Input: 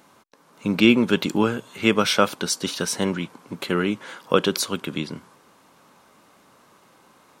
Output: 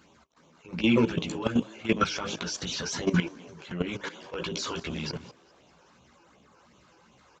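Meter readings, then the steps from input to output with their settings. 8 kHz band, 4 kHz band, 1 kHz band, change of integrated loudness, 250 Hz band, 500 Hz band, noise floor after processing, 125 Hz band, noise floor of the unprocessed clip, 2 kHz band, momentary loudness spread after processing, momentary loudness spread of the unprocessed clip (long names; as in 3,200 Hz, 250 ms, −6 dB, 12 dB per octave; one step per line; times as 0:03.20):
−8.5 dB, −8.0 dB, −7.5 dB, −7.5 dB, −6.5 dB, −8.5 dB, −60 dBFS, −2.5 dB, −56 dBFS, −7.5 dB, 14 LU, 14 LU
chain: all-pass phaser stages 12, 2.7 Hz, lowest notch 190–1,700 Hz
transient designer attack −12 dB, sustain +6 dB
high-pass filter 41 Hz
low-shelf EQ 96 Hz +9 dB
mains-hum notches 50/100/150/200/250/300/350/400 Hz
echo with shifted repeats 203 ms, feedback 47%, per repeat +98 Hz, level −19 dB
downsampling to 16,000 Hz
multi-voice chorus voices 6, 1.3 Hz, delay 15 ms, depth 3 ms
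output level in coarse steps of 13 dB
level +5.5 dB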